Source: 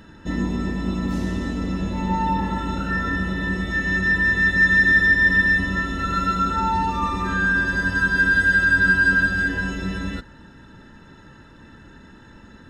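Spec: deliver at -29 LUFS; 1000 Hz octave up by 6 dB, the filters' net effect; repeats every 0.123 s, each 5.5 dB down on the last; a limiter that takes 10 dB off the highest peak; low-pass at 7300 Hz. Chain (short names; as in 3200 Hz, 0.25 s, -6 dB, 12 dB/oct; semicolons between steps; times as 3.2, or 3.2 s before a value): LPF 7300 Hz; bell 1000 Hz +7.5 dB; limiter -15.5 dBFS; feedback echo 0.123 s, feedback 53%, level -5.5 dB; gain -8.5 dB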